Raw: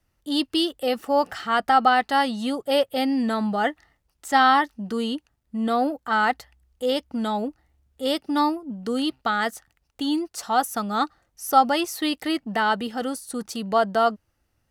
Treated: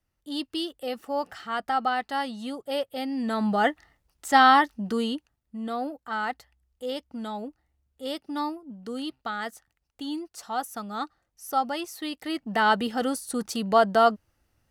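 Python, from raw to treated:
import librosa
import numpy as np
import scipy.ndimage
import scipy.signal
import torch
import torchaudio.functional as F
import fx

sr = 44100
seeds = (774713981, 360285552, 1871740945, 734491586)

y = fx.gain(x, sr, db=fx.line((3.1, -8.0), (3.5, 0.5), (4.91, 0.5), (5.61, -8.5), (12.18, -8.5), (12.67, 1.0)))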